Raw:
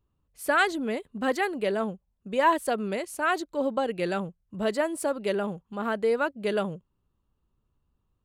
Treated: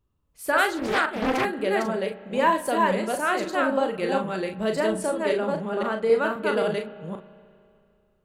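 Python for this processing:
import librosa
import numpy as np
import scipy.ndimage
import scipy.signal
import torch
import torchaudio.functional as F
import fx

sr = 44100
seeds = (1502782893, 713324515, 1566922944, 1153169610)

y = fx.reverse_delay(x, sr, ms=265, wet_db=-1.5)
y = fx.lowpass(y, sr, hz=10000.0, slope=12, at=(4.86, 6.21))
y = fx.room_early_taps(y, sr, ms=(37, 48), db=(-7.5, -13.0))
y = fx.rev_spring(y, sr, rt60_s=2.4, pass_ms=(32, 59), chirp_ms=75, drr_db=15.5)
y = fx.doppler_dist(y, sr, depth_ms=0.66, at=(0.77, 1.45))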